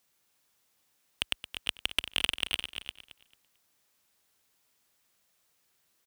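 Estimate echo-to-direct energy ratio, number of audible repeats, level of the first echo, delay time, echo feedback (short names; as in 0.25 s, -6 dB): -7.0 dB, 5, -13.0 dB, 0.222 s, no steady repeat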